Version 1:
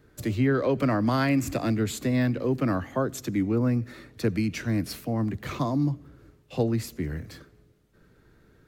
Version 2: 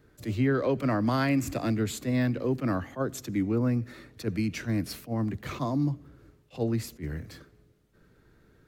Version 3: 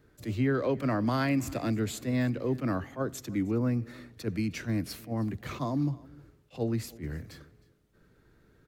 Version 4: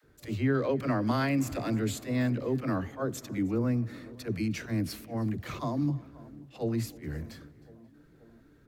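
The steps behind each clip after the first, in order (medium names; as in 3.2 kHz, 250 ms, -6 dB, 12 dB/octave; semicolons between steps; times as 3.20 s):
attacks held to a fixed rise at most 310 dB/s; trim -2 dB
delay 312 ms -22.5 dB; trim -2 dB
phase dispersion lows, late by 43 ms, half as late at 360 Hz; tape echo 531 ms, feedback 76%, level -19 dB, low-pass 1.2 kHz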